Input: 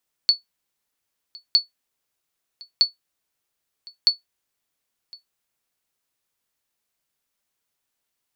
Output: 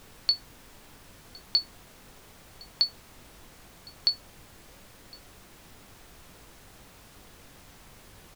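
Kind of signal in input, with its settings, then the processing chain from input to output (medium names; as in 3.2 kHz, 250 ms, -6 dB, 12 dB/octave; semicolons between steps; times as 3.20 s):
sonar ping 4.44 kHz, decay 0.14 s, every 1.26 s, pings 4, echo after 1.06 s, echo -25 dB -7 dBFS
treble shelf 4.5 kHz -11 dB; added noise pink -52 dBFS; doubling 21 ms -13 dB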